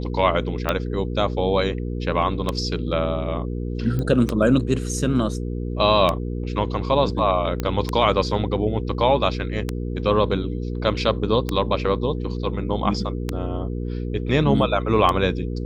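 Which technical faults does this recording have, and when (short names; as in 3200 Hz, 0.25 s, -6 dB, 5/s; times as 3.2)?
hum 60 Hz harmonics 8 -27 dBFS
tick 33 1/3 rpm -8 dBFS
3.99 pop -15 dBFS
7.6 pop -11 dBFS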